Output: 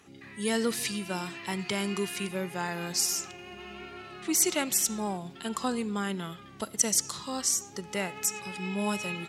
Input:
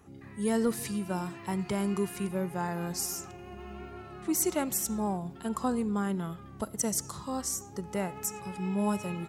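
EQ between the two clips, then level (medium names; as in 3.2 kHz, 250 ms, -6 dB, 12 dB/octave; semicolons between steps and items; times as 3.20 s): frequency weighting D; 0.0 dB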